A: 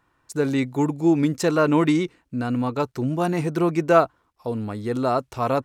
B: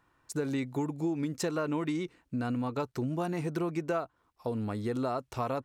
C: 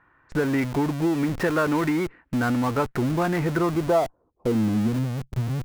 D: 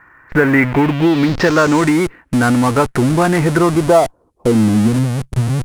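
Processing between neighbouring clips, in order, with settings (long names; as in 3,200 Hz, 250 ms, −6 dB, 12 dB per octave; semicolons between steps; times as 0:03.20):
downward compressor 6 to 1, threshold −26 dBFS, peak gain reduction 15 dB; level −3 dB
low-pass filter sweep 1,800 Hz → 160 Hz, 0:03.48–0:05.03; in parallel at −6 dB: comparator with hysteresis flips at −46.5 dBFS; on the sum: level +5.5 dB
low-pass filter sweep 2,000 Hz → 10,000 Hz, 0:00.65–0:01.97; in parallel at −9.5 dB: floating-point word with a short mantissa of 2 bits; on the sum: level +7.5 dB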